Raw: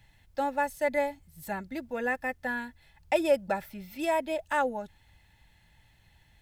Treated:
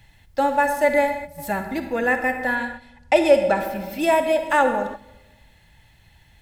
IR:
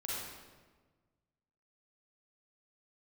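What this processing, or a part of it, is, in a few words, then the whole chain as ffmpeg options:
keyed gated reverb: -filter_complex "[0:a]asplit=3[link_01][link_02][link_03];[1:a]atrim=start_sample=2205[link_04];[link_02][link_04]afir=irnorm=-1:irlink=0[link_05];[link_03]apad=whole_len=282902[link_06];[link_05][link_06]sidechaingate=range=-12dB:threshold=-49dB:ratio=16:detection=peak,volume=-6dB[link_07];[link_01][link_07]amix=inputs=2:normalize=0,asettb=1/sr,asplit=3[link_08][link_09][link_10];[link_08]atrim=end=2.554[link_11];[link_09]atrim=start=2.55:end=3.6,asetpts=PTS-STARTPTS,afade=type=in:duration=0.004:curve=qsin,afade=type=out:start_time=1.046:duration=0.004:curve=qsin,lowpass=9000[link_12];[link_10]atrim=start=3.596[link_13];[link_11][link_12]acrossfade=duration=0.004:curve1=hsin:curve2=qsin[link_14];[link_14][link_13]acrossfade=duration=0.004:curve1=qsin:curve2=hsin,volume=7dB"

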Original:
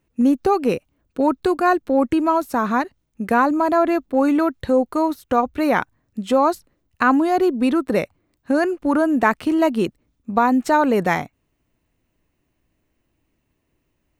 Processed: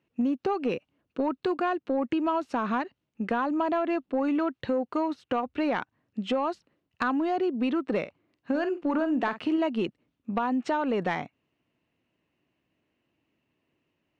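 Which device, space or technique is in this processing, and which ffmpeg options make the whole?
AM radio: -filter_complex "[0:a]highpass=140,lowpass=4400,lowpass=8200,acompressor=threshold=-19dB:ratio=6,asoftclip=type=tanh:threshold=-13dB,equalizer=frequency=2800:width=4.5:gain=6,asettb=1/sr,asplit=3[link_01][link_02][link_03];[link_01]atrim=end=8.004[link_04];[link_02]atrim=start=8:end=9.58,asetpts=PTS-STARTPTS,afade=type=in:duration=0.004:curve=qsin,afade=type=out:start_time=1.576:duration=0.004:curve=qsin,asplit=2[link_05][link_06];[link_06]adelay=48,volume=-11dB[link_07];[link_05][link_07]amix=inputs=2:normalize=0,atrim=end_sample=69678[link_08];[link_03]atrim=start=9.576[link_09];[link_04][link_08]acrossfade=duration=0.004:curve1=hsin:curve2=qsin[link_10];[link_10][link_09]acrossfade=duration=0.004:curve1=qsin:curve2=hsin,volume=-3.5dB"

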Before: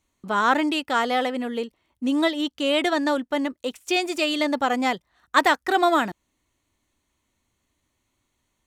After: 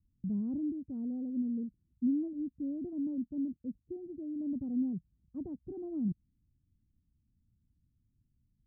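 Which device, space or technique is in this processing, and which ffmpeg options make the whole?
the neighbour's flat through the wall: -af "lowpass=frequency=200:width=0.5412,lowpass=frequency=200:width=1.3066,equalizer=frequency=140:width_type=o:width=0.77:gain=3,volume=4dB"

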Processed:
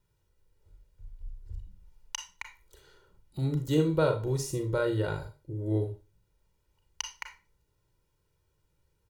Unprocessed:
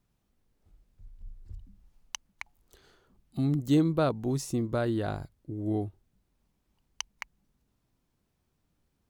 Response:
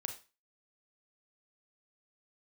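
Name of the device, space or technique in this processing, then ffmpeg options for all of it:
microphone above a desk: -filter_complex "[0:a]aecho=1:1:2.1:0.84[link_01];[1:a]atrim=start_sample=2205[link_02];[link_01][link_02]afir=irnorm=-1:irlink=0"

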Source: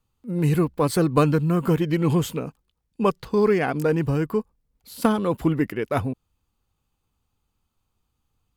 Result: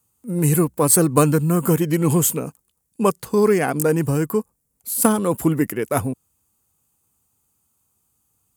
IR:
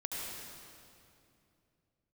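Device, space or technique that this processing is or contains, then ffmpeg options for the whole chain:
budget condenser microphone: -af "highpass=92,highshelf=frequency=5900:width_type=q:width=1.5:gain=14,volume=3dB"

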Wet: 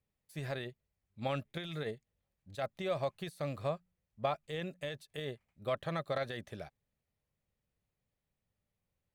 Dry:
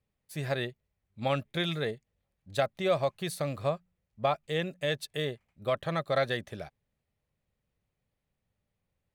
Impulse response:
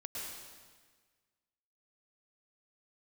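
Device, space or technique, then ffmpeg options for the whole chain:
de-esser from a sidechain: -filter_complex "[0:a]asplit=2[link_01][link_02];[link_02]highpass=frequency=4700:width=0.5412,highpass=frequency=4700:width=1.3066,apad=whole_len=403193[link_03];[link_01][link_03]sidechaincompress=threshold=-50dB:ratio=12:attack=2.6:release=55,volume=-4.5dB"

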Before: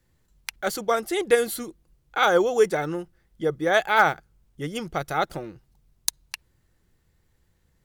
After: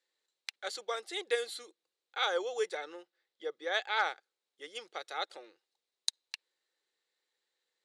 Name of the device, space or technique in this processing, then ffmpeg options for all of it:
phone speaker on a table: -filter_complex "[0:a]asettb=1/sr,asplit=3[link_01][link_02][link_03];[link_01]atrim=end=2.784[link_04];[link_02]atrim=start=2.78:end=4.04,asetpts=PTS-STARTPTS,afade=type=in:duration=0.004:curve=qsin,afade=type=out:start_time=1.256:duration=0.004:curve=qsin,lowpass=7300[link_05];[link_03]atrim=start=4.036[link_06];[link_04][link_05]acrossfade=duration=0.004:curve1=hsin:curve2=qsin[link_07];[link_07][link_06]acrossfade=duration=0.004:curve1=qsin:curve2=hsin,highpass=frequency=480:width=0.5412,highpass=frequency=480:width=1.3066,equalizer=frequency=660:width_type=q:width=4:gain=-8,equalizer=frequency=1000:width_type=q:width=4:gain=-6,equalizer=frequency=1400:width_type=q:width=4:gain=-4,equalizer=frequency=3900:width_type=q:width=4:gain=9,equalizer=frequency=6100:width_type=q:width=4:gain=-3,lowpass=frequency=8600:width=0.5412,lowpass=frequency=8600:width=1.3066,volume=-8.5dB"

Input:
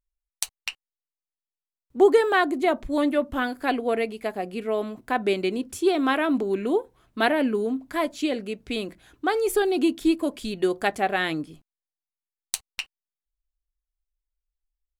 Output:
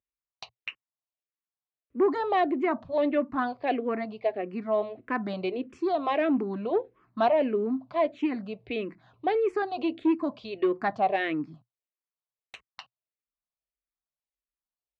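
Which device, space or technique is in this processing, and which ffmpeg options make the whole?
barber-pole phaser into a guitar amplifier: -filter_complex "[0:a]asplit=2[link_01][link_02];[link_02]afreqshift=-1.6[link_03];[link_01][link_03]amix=inputs=2:normalize=1,asoftclip=type=tanh:threshold=-17dB,highpass=110,equalizer=frequency=120:width_type=q:width=4:gain=9,equalizer=frequency=650:width_type=q:width=4:gain=5,equalizer=frequency=1100:width_type=q:width=4:gain=4,equalizer=frequency=1500:width_type=q:width=4:gain=-4,equalizer=frequency=3300:width_type=q:width=4:gain=-7,lowpass=frequency=3700:width=0.5412,lowpass=frequency=3700:width=1.3066"

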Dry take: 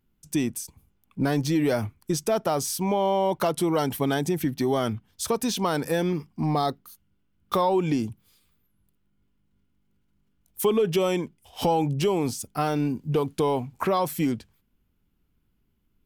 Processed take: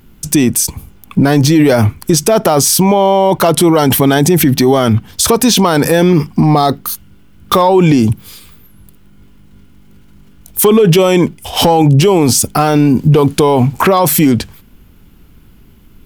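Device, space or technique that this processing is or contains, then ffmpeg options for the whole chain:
loud club master: -af "acompressor=threshold=-30dB:ratio=1.5,asoftclip=type=hard:threshold=-19dB,alimiter=level_in=29dB:limit=-1dB:release=50:level=0:latency=1,volume=-1dB"

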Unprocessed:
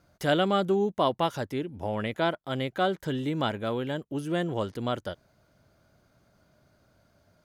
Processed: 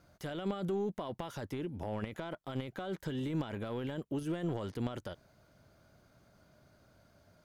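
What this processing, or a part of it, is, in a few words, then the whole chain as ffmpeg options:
de-esser from a sidechain: -filter_complex "[0:a]asplit=2[link_01][link_02];[link_02]highpass=frequency=4100:poles=1,apad=whole_len=328275[link_03];[link_01][link_03]sidechaincompress=threshold=-51dB:ratio=6:attack=1.4:release=22"

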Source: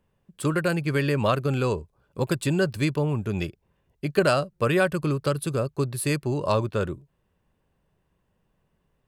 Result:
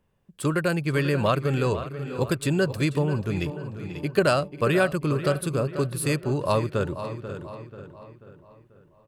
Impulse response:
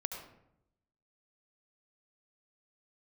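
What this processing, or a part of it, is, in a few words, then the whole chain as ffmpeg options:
ducked delay: -filter_complex "[0:a]asplit=2[link_01][link_02];[link_02]adelay=488,lowpass=frequency=3600:poles=1,volume=-11.5dB,asplit=2[link_03][link_04];[link_04]adelay=488,lowpass=frequency=3600:poles=1,volume=0.46,asplit=2[link_05][link_06];[link_06]adelay=488,lowpass=frequency=3600:poles=1,volume=0.46,asplit=2[link_07][link_08];[link_08]adelay=488,lowpass=frequency=3600:poles=1,volume=0.46,asplit=2[link_09][link_10];[link_10]adelay=488,lowpass=frequency=3600:poles=1,volume=0.46[link_11];[link_01][link_03][link_05][link_07][link_09][link_11]amix=inputs=6:normalize=0,asplit=3[link_12][link_13][link_14];[link_13]adelay=539,volume=-7dB[link_15];[link_14]apad=whole_len=531634[link_16];[link_15][link_16]sidechaincompress=threshold=-36dB:ratio=5:attack=16:release=390[link_17];[link_12][link_17]amix=inputs=2:normalize=0"

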